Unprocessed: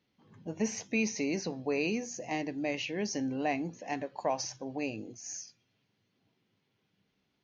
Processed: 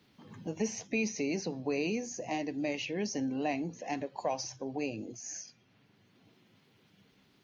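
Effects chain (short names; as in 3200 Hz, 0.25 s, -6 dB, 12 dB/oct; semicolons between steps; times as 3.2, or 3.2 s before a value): bin magnitudes rounded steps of 15 dB; dynamic EQ 1500 Hz, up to -4 dB, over -51 dBFS, Q 1.3; three-band squash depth 40%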